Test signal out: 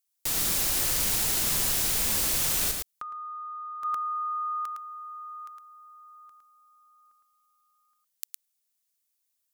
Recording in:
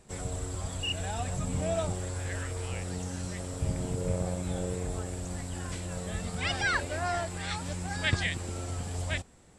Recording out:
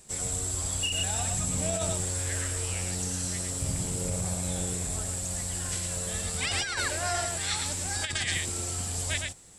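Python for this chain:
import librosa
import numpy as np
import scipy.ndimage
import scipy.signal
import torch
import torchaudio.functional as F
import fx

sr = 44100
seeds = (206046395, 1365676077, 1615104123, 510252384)

y = fx.high_shelf(x, sr, hz=2900.0, db=11.5)
y = y + 10.0 ** (-4.5 / 20.0) * np.pad(y, (int(110 * sr / 1000.0), 0))[:len(y)]
y = fx.over_compress(y, sr, threshold_db=-26.0, ratio=-0.5)
y = fx.high_shelf(y, sr, hz=5800.0, db=6.0)
y = y * 10.0 ** (-3.0 / 20.0)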